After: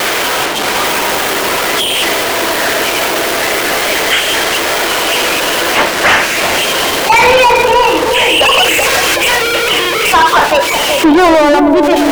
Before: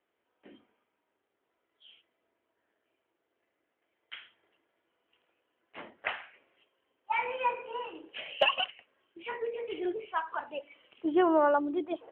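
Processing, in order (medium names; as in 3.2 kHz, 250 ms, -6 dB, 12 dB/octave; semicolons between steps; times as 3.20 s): zero-crossing glitches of -26.5 dBFS; spectral selection erased 8.63–10.12 s, 210–2800 Hz; overdrive pedal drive 36 dB, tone 3.2 kHz, clips at -13.5 dBFS; vibrato 0.89 Hz 15 cents; on a send: bucket-brigade echo 378 ms, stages 2048, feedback 69%, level -4 dB; on the sum: loudness maximiser +16 dB; trim -1 dB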